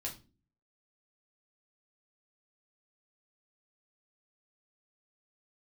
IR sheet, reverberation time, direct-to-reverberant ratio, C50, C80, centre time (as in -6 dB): 0.35 s, -2.5 dB, 11.5 dB, 18.0 dB, 18 ms